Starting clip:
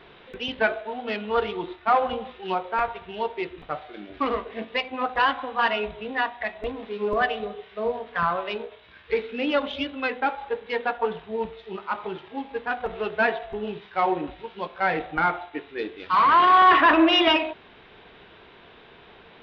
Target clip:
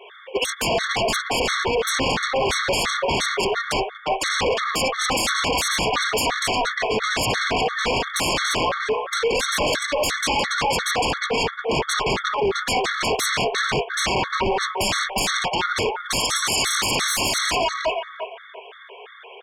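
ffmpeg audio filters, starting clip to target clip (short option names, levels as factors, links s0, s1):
-filter_complex "[0:a]aeval=exprs='val(0)+0.5*0.0562*sgn(val(0))':c=same,afftfilt=real='re*between(b*sr/4096,360,3600)':imag='im*between(b*sr/4096,360,3600)':win_size=4096:overlap=0.75,asplit=6[s0][s1][s2][s3][s4][s5];[s1]adelay=176,afreqshift=32,volume=0.188[s6];[s2]adelay=352,afreqshift=64,volume=0.1[s7];[s3]adelay=528,afreqshift=96,volume=0.0531[s8];[s4]adelay=704,afreqshift=128,volume=0.0282[s9];[s5]adelay=880,afreqshift=160,volume=0.0148[s10];[s0][s6][s7][s8][s9][s10]amix=inputs=6:normalize=0,aphaser=in_gain=1:out_gain=1:delay=3.8:decay=0.33:speed=0.82:type=triangular,agate=range=0.0398:threshold=0.0501:ratio=16:detection=peak,acompressor=threshold=0.1:ratio=12,asplit=2[s11][s12];[s12]adelay=354,lowpass=f=2300:p=1,volume=0.473,asplit=2[s13][s14];[s14]adelay=354,lowpass=f=2300:p=1,volume=0.24,asplit=2[s15][s16];[s16]adelay=354,lowpass=f=2300:p=1,volume=0.24[s17];[s11][s13][s15][s17]amix=inputs=4:normalize=0,acrossover=split=2800[s18][s19];[s19]acompressor=threshold=0.00447:ratio=4:attack=1:release=60[s20];[s18][s20]amix=inputs=2:normalize=0,aeval=exprs='0.266*sin(PI/2*8.91*val(0)/0.266)':c=same,afreqshift=15,afftfilt=real='re*gt(sin(2*PI*2.9*pts/sr)*(1-2*mod(floor(b*sr/1024/1100),2)),0)':imag='im*gt(sin(2*PI*2.9*pts/sr)*(1-2*mod(floor(b*sr/1024/1100),2)),0)':win_size=1024:overlap=0.75,volume=0.596"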